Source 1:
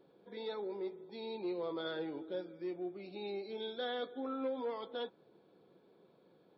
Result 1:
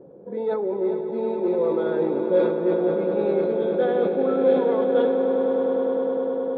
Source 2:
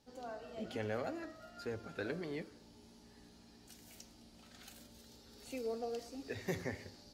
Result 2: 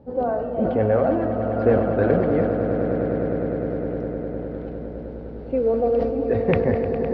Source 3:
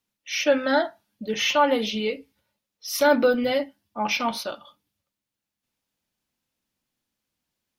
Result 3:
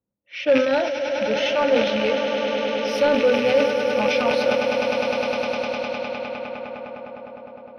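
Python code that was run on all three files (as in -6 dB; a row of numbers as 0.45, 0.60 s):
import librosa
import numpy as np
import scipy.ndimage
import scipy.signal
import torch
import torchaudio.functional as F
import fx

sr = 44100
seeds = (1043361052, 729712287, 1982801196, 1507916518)

p1 = fx.rattle_buzz(x, sr, strikes_db=-36.0, level_db=-14.0)
p2 = fx.rider(p1, sr, range_db=4, speed_s=0.5)
p3 = fx.highpass(p2, sr, hz=99.0, slope=6)
p4 = fx.low_shelf(p3, sr, hz=150.0, db=10.5)
p5 = p4 + fx.echo_swell(p4, sr, ms=102, loudest=8, wet_db=-11.0, dry=0)
p6 = np.clip(p5, -10.0 ** (-12.5 / 20.0), 10.0 ** (-12.5 / 20.0))
p7 = fx.peak_eq(p6, sr, hz=530.0, db=8.0, octaves=0.31)
p8 = fx.env_lowpass(p7, sr, base_hz=700.0, full_db=-17.0)
p9 = scipy.signal.savgol_filter(p8, 15, 4, mode='constant')
p10 = fx.sustainer(p9, sr, db_per_s=51.0)
y = p10 * 10.0 ** (-22 / 20.0) / np.sqrt(np.mean(np.square(p10)))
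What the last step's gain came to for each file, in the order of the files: +12.0, +16.5, -3.5 dB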